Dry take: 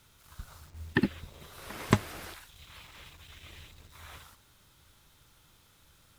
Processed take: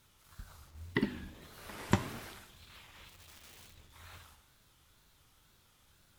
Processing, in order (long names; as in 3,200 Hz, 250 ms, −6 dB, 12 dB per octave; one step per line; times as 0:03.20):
coupled-rooms reverb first 0.93 s, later 2.7 s, DRR 8.5 dB
tape wow and flutter 140 cents
0:03.08–0:03.76: wrap-around overflow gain 44.5 dB
level −5 dB